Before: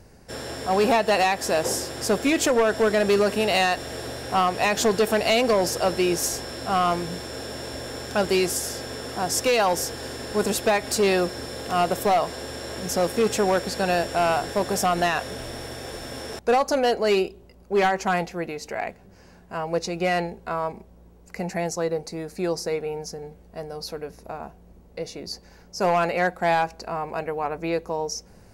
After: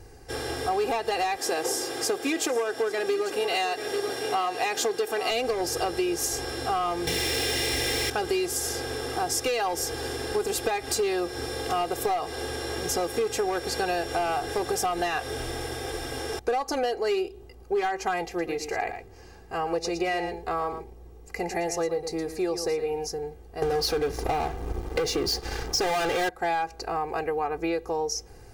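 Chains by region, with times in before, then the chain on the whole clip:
1.37–5.31 HPF 220 Hz + echo 0.843 s -13 dB
7.07–8.1 resonant high shelf 1700 Hz +6 dB, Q 3 + sample leveller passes 3
18.25–23.07 notch 1500 Hz, Q 16 + echo 0.115 s -11 dB
23.62–26.29 high shelf 10000 Hz -9 dB + sample leveller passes 5
whole clip: comb 2.5 ms, depth 80%; compressor, threshold -24 dBFS

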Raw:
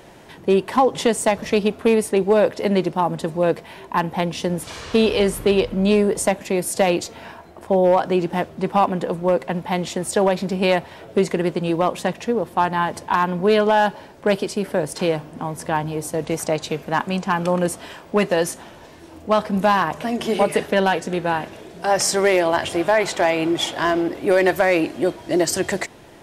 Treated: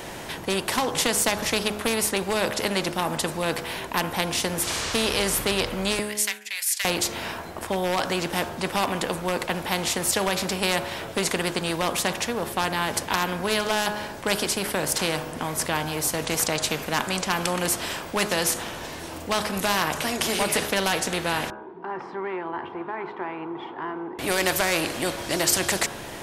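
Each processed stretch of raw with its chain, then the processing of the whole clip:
5.99–6.85 expander -27 dBFS + ladder high-pass 1700 Hz, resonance 50% + tilt +2 dB/oct
21.5–24.19 double band-pass 590 Hz, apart 1.3 oct + air absorption 380 m
whole clip: high shelf 6800 Hz +5 dB; de-hum 69.81 Hz, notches 24; spectral compressor 2:1

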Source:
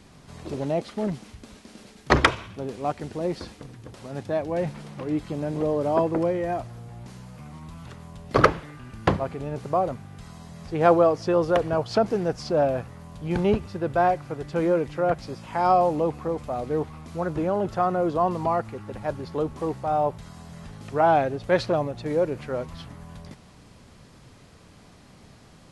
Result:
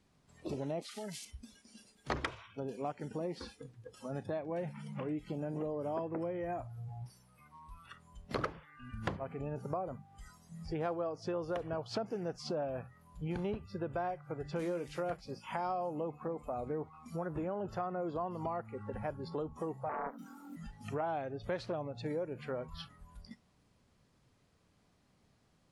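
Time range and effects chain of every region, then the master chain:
0.82–1.25 tilt +3.5 dB/oct + compressor 8:1, threshold -34 dBFS
7.05–7.93 bell 180 Hz -4 dB 2.7 oct + notch 6900 Hz, Q 8.1
14.59–15.17 high shelf 3100 Hz +11 dB + doubler 23 ms -12.5 dB
19.89–20.56 frequency shift +120 Hz + compressor 3:1, threshold -25 dBFS + Doppler distortion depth 0.59 ms
whole clip: spectral noise reduction 19 dB; compressor 4:1, threshold -36 dBFS; gain -1 dB

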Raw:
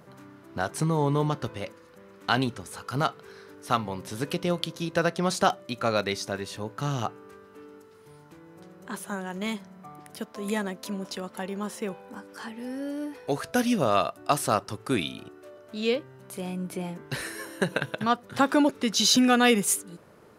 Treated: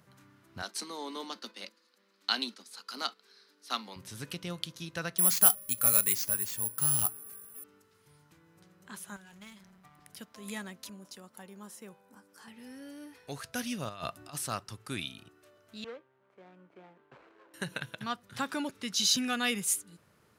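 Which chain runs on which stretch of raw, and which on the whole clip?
0.62–3.96 gate -41 dBFS, range -7 dB + steep high-pass 200 Hz 96 dB/oct + bell 4400 Hz +12 dB 0.63 oct
5.18–7.64 careless resampling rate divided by 4×, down none, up zero stuff + notch 3900 Hz, Q 16
9.16–10.02 half-wave gain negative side -12 dB + transient shaper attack +12 dB, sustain +6 dB + compressor 2:1, threshold -42 dBFS
10.89–12.48 HPF 250 Hz 6 dB/oct + bell 2800 Hz -9 dB 2.3 oct
13.89–14.35 low shelf 360 Hz +4.5 dB + negative-ratio compressor -27 dBFS, ratio -0.5
15.84–17.54 median filter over 25 samples + LPF 5600 Hz + three-band isolator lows -23 dB, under 340 Hz, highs -17 dB, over 2200 Hz
whole clip: HPF 55 Hz; bell 470 Hz -12 dB 2.8 oct; gain -4 dB

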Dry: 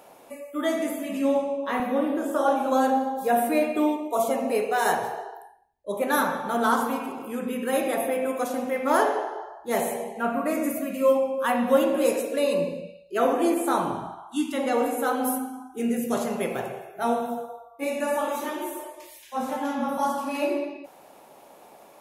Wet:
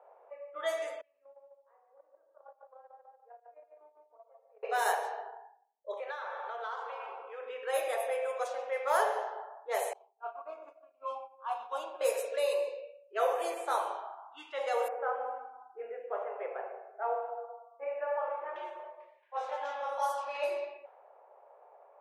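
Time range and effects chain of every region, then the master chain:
1.01–4.63 gate -19 dBFS, range -31 dB + feedback echo 0.144 s, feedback 28%, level -10 dB + compressor 5:1, threshold -44 dBFS
5.93–7.41 HPF 300 Hz + high shelf 3300 Hz +9.5 dB + compressor 5:1, threshold -29 dBFS
9.93–12.01 expander -21 dBFS + fixed phaser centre 510 Hz, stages 6
14.88–18.56 Butterworth band-stop 4800 Hz, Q 0.56 + air absorption 240 m
whole clip: low-pass opened by the level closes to 1100 Hz, open at -20.5 dBFS; steep high-pass 450 Hz 48 dB/oct; low-pass opened by the level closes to 2000 Hz, open at -21 dBFS; gain -6 dB

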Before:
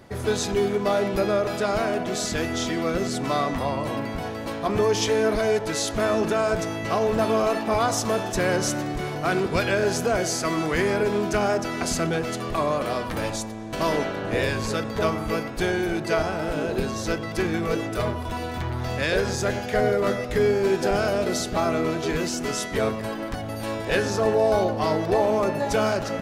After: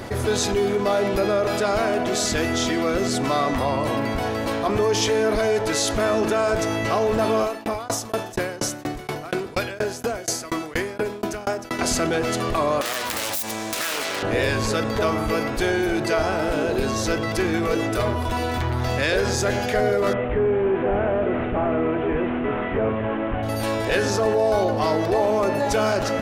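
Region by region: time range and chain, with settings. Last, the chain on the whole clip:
7.42–11.79 high shelf 11000 Hz +9 dB + dB-ramp tremolo decaying 4.2 Hz, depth 37 dB
12.81–14.23 self-modulated delay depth 0.5 ms + tilt +3.5 dB/oct + compressor 4:1, threshold -31 dBFS
20.13–23.43 delta modulation 16 kbps, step -32 dBFS + LPF 1400 Hz 6 dB/oct
whole clip: bell 170 Hz -9 dB 0.35 oct; fast leveller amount 50%

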